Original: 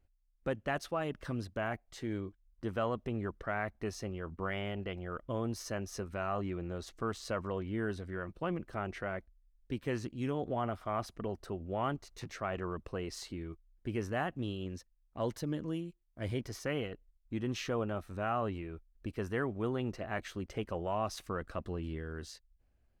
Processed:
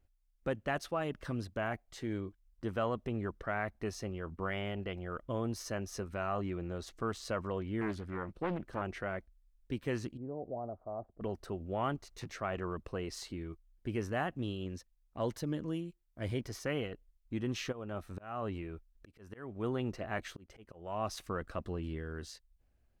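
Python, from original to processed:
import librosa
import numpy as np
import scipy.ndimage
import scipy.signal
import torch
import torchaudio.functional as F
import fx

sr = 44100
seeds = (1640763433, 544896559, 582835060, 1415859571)

y = fx.doppler_dist(x, sr, depth_ms=0.58, at=(7.81, 8.82))
y = fx.ladder_lowpass(y, sr, hz=780.0, resonance_pct=45, at=(10.17, 11.21))
y = fx.auto_swell(y, sr, attack_ms=354.0, at=(17.71, 21.09), fade=0.02)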